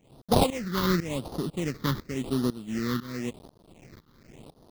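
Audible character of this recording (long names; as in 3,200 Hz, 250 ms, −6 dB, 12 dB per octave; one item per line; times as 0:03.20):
a quantiser's noise floor 8 bits, dither none
tremolo saw up 2 Hz, depth 90%
aliases and images of a low sample rate 1,600 Hz, jitter 20%
phaser sweep stages 6, 0.92 Hz, lowest notch 650–2,300 Hz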